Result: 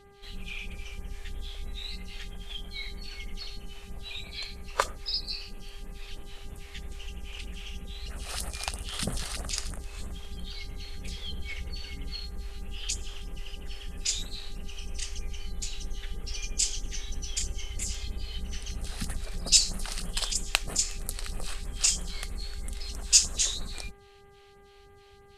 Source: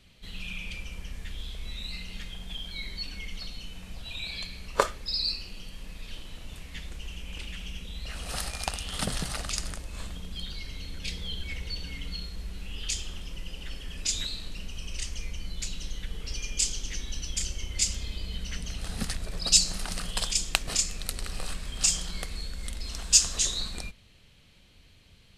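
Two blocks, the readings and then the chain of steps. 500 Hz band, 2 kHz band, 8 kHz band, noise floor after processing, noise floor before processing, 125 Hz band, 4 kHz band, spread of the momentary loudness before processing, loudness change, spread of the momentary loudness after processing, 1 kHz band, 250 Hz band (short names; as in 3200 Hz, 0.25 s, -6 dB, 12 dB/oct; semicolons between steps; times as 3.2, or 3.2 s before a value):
-3.5 dB, -1.5 dB, -0.5 dB, -54 dBFS, -56 dBFS, -1.0 dB, -1.5 dB, 15 LU, -1.0 dB, 16 LU, -2.0 dB, -3.0 dB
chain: phaser stages 2, 3.1 Hz, lowest notch 130–4800 Hz; buzz 400 Hz, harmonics 5, -56 dBFS -6 dB/oct; gain -1 dB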